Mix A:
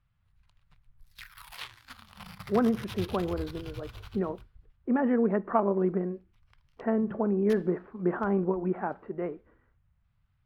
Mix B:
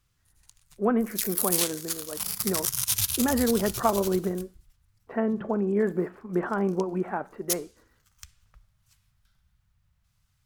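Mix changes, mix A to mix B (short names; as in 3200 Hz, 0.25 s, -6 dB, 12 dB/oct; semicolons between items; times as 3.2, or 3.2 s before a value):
speech: entry -1.70 s; master: remove air absorption 420 m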